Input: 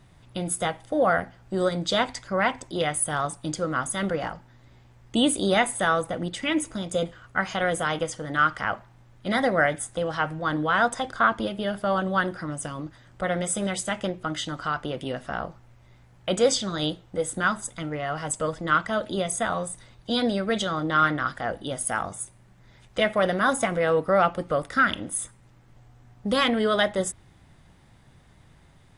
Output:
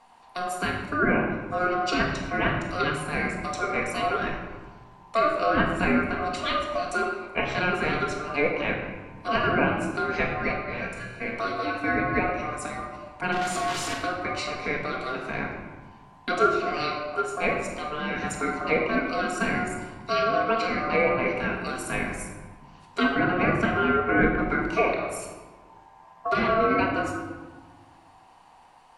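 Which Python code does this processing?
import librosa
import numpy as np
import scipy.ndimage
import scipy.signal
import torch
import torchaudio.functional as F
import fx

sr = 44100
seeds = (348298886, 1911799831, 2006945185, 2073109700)

y = fx.clip_1bit(x, sr, at=(13.32, 13.93))
y = y * np.sin(2.0 * np.pi * 900.0 * np.arange(len(y)) / sr)
y = fx.comb_fb(y, sr, f0_hz=120.0, decay_s=0.99, harmonics='all', damping=0.0, mix_pct=80, at=(10.52, 11.33))
y = fx.env_lowpass_down(y, sr, base_hz=1600.0, full_db=-20.5)
y = fx.room_shoebox(y, sr, seeds[0], volume_m3=930.0, walls='mixed', distance_m=1.7)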